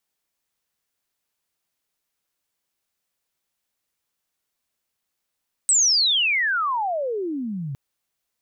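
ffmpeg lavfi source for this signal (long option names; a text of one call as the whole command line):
ffmpeg -f lavfi -i "aevalsrc='pow(10,(-14-13*t/2.06)/20)*sin(2*PI*8300*2.06/log(130/8300)*(exp(log(130/8300)*t/2.06)-1))':duration=2.06:sample_rate=44100" out.wav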